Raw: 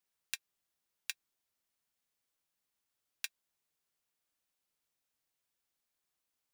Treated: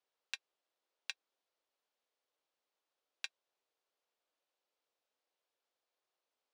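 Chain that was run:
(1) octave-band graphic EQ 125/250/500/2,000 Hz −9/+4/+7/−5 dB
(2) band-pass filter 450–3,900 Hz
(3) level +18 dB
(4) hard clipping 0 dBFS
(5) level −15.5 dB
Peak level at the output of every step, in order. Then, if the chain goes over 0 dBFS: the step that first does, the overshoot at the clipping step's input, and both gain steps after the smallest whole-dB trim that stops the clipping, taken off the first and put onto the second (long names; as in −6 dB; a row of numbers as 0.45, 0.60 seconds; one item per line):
−13.0, −22.5, −4.5, −4.5, −20.0 dBFS
no step passes full scale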